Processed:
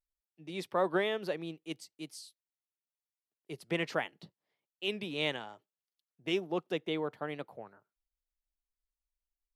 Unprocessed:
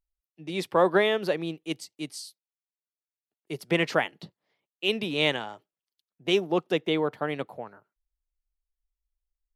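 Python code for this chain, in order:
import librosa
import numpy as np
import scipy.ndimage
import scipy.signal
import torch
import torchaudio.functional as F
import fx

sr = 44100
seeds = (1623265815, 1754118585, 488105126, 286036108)

y = fx.record_warp(x, sr, rpm=45.0, depth_cents=100.0)
y = F.gain(torch.from_numpy(y), -8.5).numpy()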